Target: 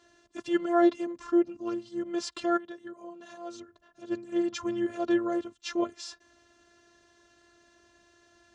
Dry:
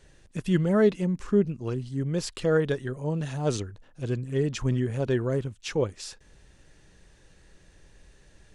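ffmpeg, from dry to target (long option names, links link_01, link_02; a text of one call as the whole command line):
ffmpeg -i in.wav -filter_complex "[0:a]asplit=3[link_01][link_02][link_03];[link_01]afade=type=out:start_time=2.56:duration=0.02[link_04];[link_02]acompressor=threshold=-38dB:ratio=4,afade=type=in:start_time=2.56:duration=0.02,afade=type=out:start_time=4.1:duration=0.02[link_05];[link_03]afade=type=in:start_time=4.1:duration=0.02[link_06];[link_04][link_05][link_06]amix=inputs=3:normalize=0,afftfilt=real='hypot(re,im)*cos(PI*b)':imag='0':win_size=512:overlap=0.75,highpass=130,equalizer=frequency=600:width_type=q:width=4:gain=6,equalizer=frequency=1200:width_type=q:width=4:gain=8,equalizer=frequency=2300:width_type=q:width=4:gain=-5,lowpass=frequency=7000:width=0.5412,lowpass=frequency=7000:width=1.3066,volume=2.5dB" out.wav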